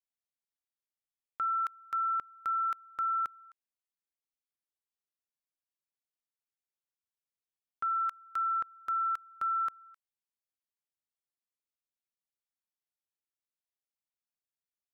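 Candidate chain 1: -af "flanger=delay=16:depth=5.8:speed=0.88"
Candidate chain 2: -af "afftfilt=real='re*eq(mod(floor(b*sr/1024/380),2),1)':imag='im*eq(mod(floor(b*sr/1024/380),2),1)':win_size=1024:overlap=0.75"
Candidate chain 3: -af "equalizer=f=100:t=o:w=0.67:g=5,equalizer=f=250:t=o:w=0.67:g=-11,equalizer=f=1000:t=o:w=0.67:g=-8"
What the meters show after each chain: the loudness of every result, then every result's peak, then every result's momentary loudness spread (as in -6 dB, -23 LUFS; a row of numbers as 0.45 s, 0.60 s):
-35.5 LUFS, -32.5 LUFS, -35.5 LUFS; -27.5 dBFS, -26.5 dBFS, -28.0 dBFS; 6 LU, 3 LU, 3 LU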